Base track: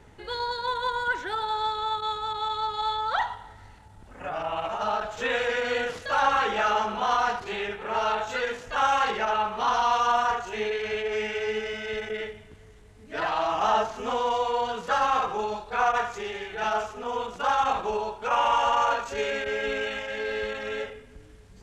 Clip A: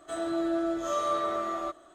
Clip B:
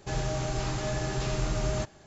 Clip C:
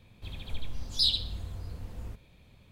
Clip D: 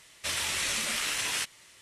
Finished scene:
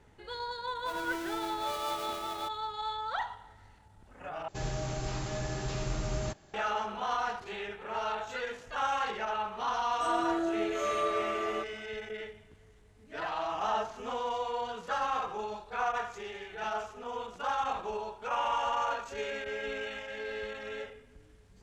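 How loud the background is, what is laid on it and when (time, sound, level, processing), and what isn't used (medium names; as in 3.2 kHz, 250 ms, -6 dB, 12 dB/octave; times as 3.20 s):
base track -8 dB
0.77 s: add A -13.5 dB + square wave that keeps the level
4.48 s: replace with B -4.5 dB
9.92 s: add A -3 dB
not used: C, D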